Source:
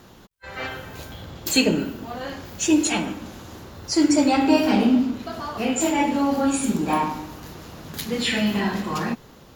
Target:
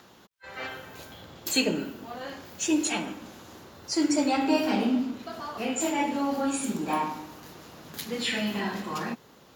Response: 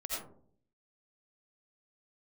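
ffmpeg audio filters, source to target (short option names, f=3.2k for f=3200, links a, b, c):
-filter_complex "[0:a]highpass=f=220:p=1,acrossover=split=700|6500[a][b][c];[b]acompressor=mode=upward:threshold=-49dB:ratio=2.5[d];[a][d][c]amix=inputs=3:normalize=0,volume=-5dB"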